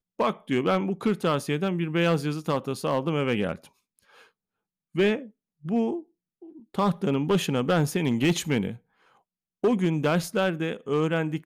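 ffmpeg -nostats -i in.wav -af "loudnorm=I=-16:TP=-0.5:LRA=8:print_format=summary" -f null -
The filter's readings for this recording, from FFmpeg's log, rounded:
Input Integrated:    -26.2 LUFS
Input True Peak:     -16.1 dBTP
Input LRA:             3.1 LU
Input Threshold:     -37.1 LUFS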